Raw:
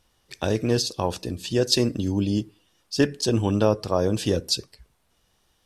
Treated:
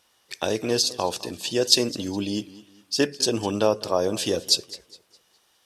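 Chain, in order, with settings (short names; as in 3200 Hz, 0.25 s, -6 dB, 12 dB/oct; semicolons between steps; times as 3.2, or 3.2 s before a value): HPF 660 Hz 6 dB/oct; dynamic EQ 1600 Hz, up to -5 dB, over -41 dBFS, Q 1; warbling echo 0.206 s, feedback 36%, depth 95 cents, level -19 dB; gain +5 dB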